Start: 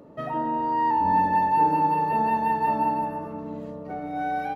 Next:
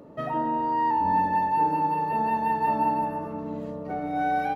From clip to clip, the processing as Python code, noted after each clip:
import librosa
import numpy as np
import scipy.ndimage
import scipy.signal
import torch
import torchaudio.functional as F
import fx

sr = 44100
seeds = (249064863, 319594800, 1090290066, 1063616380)

y = fx.rider(x, sr, range_db=4, speed_s=2.0)
y = y * 10.0 ** (-1.5 / 20.0)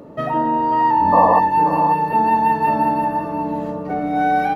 y = fx.spec_paint(x, sr, seeds[0], shape='noise', start_s=1.12, length_s=0.28, low_hz=440.0, high_hz=1200.0, level_db=-23.0)
y = y + 10.0 ** (-10.0 / 20.0) * np.pad(y, (int(535 * sr / 1000.0), 0))[:len(y)]
y = y * 10.0 ** (8.0 / 20.0)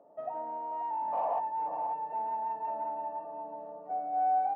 y = 10.0 ** (-11.0 / 20.0) * np.tanh(x / 10.0 ** (-11.0 / 20.0))
y = fx.bandpass_q(y, sr, hz=720.0, q=6.2)
y = y * 10.0 ** (-7.0 / 20.0)